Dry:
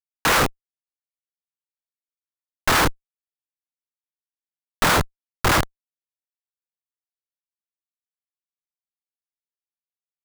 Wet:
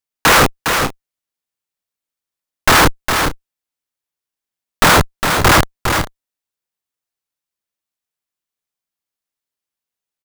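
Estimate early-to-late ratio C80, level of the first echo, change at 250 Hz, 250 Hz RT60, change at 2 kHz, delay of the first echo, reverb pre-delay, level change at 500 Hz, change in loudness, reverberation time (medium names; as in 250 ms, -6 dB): no reverb, -6.5 dB, +9.0 dB, no reverb, +9.0 dB, 408 ms, no reverb, +9.0 dB, +7.0 dB, no reverb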